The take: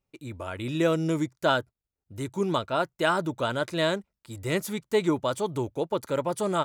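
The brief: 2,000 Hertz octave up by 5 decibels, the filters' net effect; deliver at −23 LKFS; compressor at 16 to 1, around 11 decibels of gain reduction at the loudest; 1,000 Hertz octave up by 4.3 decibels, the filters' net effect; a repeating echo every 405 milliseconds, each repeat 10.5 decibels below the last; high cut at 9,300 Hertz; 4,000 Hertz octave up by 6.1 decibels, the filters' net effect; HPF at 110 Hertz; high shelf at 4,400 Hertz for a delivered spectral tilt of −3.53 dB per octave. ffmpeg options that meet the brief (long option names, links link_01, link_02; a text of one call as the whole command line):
ffmpeg -i in.wav -af "highpass=110,lowpass=9300,equalizer=frequency=1000:width_type=o:gain=4,equalizer=frequency=2000:width_type=o:gain=4.5,equalizer=frequency=4000:width_type=o:gain=8.5,highshelf=frequency=4400:gain=-6,acompressor=threshold=-27dB:ratio=16,aecho=1:1:405|810|1215:0.299|0.0896|0.0269,volume=10dB" out.wav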